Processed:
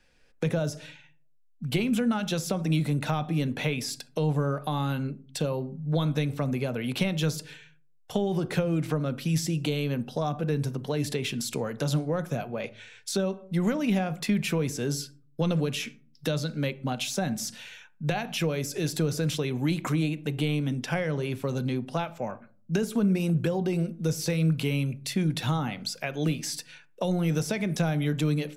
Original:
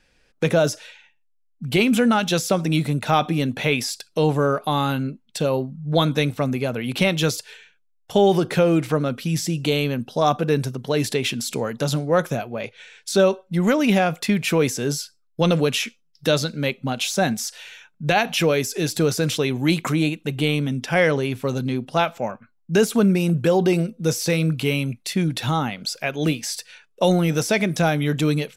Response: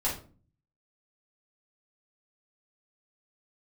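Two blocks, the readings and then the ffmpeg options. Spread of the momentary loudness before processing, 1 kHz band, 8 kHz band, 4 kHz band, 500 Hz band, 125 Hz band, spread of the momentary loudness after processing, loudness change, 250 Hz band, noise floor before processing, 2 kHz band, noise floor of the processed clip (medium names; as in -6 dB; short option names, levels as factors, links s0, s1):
8 LU, -11.0 dB, -7.0 dB, -8.5 dB, -10.0 dB, -4.0 dB, 7 LU, -7.0 dB, -6.0 dB, -64 dBFS, -10.0 dB, -60 dBFS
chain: -filter_complex "[0:a]asplit=2[s0][s1];[1:a]atrim=start_sample=2205,lowpass=2100[s2];[s1][s2]afir=irnorm=-1:irlink=0,volume=0.106[s3];[s0][s3]amix=inputs=2:normalize=0,acrossover=split=210[s4][s5];[s5]acompressor=threshold=0.0631:ratio=6[s6];[s4][s6]amix=inputs=2:normalize=0,volume=0.631"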